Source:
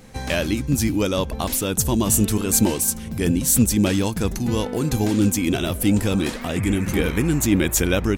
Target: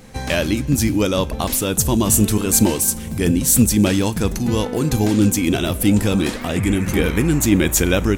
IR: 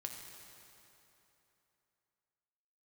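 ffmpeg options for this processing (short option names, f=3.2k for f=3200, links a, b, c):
-filter_complex "[0:a]asplit=2[a][b];[1:a]atrim=start_sample=2205,adelay=38[c];[b][c]afir=irnorm=-1:irlink=0,volume=-16dB[d];[a][d]amix=inputs=2:normalize=0,volume=3dB"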